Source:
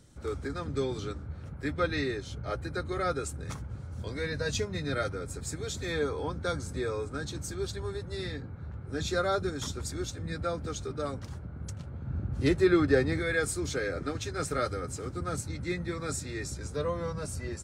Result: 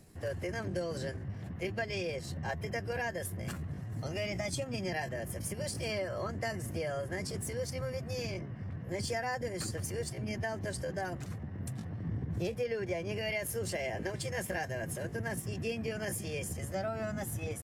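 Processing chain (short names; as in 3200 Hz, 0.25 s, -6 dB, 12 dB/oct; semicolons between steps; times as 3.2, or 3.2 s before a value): compressor 12:1, threshold -31 dBFS, peak gain reduction 13.5 dB; pitch shift +4.5 st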